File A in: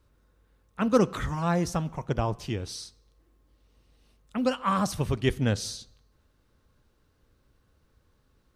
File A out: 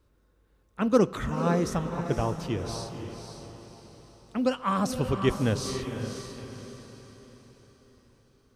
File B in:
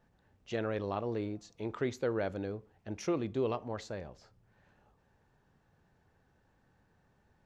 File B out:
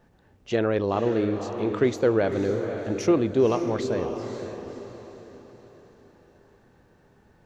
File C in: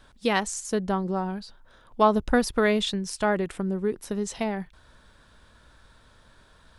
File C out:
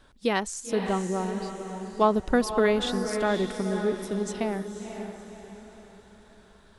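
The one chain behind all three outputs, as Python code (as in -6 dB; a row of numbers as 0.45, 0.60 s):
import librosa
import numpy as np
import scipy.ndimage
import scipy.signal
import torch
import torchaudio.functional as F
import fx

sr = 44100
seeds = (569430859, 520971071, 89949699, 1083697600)

y = fx.peak_eq(x, sr, hz=360.0, db=4.0, octaves=1.2)
y = fx.echo_diffused(y, sr, ms=529, feedback_pct=43, wet_db=-7.5)
y = librosa.util.normalize(y) * 10.0 ** (-9 / 20.0)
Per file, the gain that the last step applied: -2.0, +8.5, -3.0 dB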